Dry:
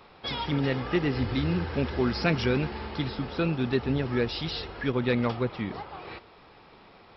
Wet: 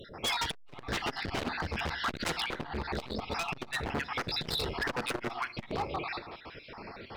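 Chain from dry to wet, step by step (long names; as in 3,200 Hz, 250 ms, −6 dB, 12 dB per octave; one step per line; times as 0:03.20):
time-frequency cells dropped at random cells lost 45%
0:02.42–0:02.85: high-shelf EQ 2,400 Hz −8.5 dB
in parallel at −0.5 dB: downward compressor 8 to 1, threshold −39 dBFS, peak gain reduction 17.5 dB
on the sum: wave folding −28.5 dBFS
on a send at −15 dB: convolution reverb RT60 0.60 s, pre-delay 9 ms
on the sum: saturating transformer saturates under 230 Hz
level +4 dB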